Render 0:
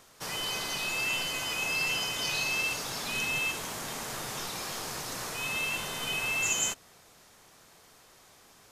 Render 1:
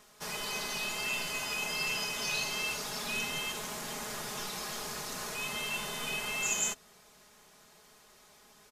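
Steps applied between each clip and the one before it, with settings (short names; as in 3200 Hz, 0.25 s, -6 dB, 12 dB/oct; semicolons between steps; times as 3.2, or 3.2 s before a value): comb 4.8 ms; gain -3.5 dB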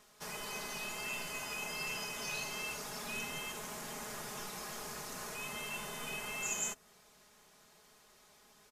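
dynamic EQ 3900 Hz, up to -6 dB, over -48 dBFS, Q 1.4; gain -4 dB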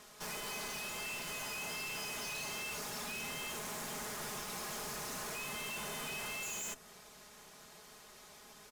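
tube stage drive 50 dB, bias 0.6; gain +10 dB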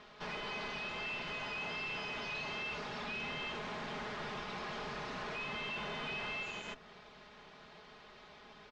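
LPF 3900 Hz 24 dB/oct; gain +2.5 dB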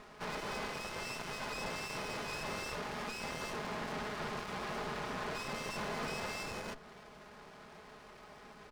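running maximum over 9 samples; gain +4 dB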